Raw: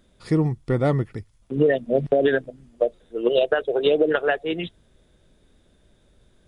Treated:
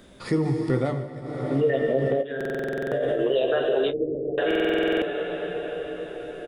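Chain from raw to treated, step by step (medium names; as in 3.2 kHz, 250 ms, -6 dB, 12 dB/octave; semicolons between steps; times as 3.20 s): de-hum 75.04 Hz, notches 5; reverberation RT60 5.5 s, pre-delay 27 ms, DRR 3 dB; 2.21–3.21 s: compressor with a negative ratio -29 dBFS, ratio -1; 3.90–4.38 s: Gaussian low-pass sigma 24 samples; peak limiter -15 dBFS, peak gain reduction 8.5 dB; bass shelf 80 Hz -7.5 dB; early reflections 15 ms -6.5 dB, 31 ms -15.5 dB; 0.75–1.55 s: dip -15.5 dB, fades 0.32 s; buffer glitch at 2.36/4.46 s, samples 2048, times 11; three bands compressed up and down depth 40%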